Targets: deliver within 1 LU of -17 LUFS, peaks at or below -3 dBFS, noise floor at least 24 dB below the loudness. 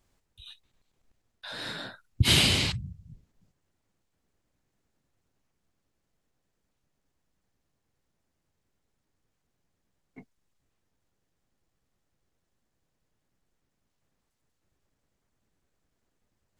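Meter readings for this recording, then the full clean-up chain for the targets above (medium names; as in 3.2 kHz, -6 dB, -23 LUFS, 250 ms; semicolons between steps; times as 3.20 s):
loudness -25.0 LUFS; peak level -9.0 dBFS; loudness target -17.0 LUFS
-> trim +8 dB; peak limiter -3 dBFS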